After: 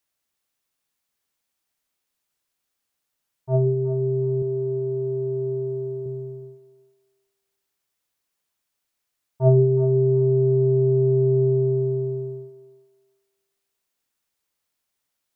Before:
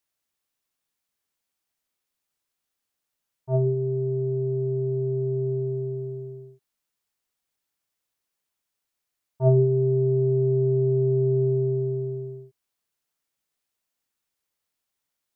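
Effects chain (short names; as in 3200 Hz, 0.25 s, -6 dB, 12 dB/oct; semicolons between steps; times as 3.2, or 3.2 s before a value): 4.42–6.06 low shelf 170 Hz -9.5 dB; thinning echo 0.367 s, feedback 36%, high-pass 780 Hz, level -8.5 dB; gain +2.5 dB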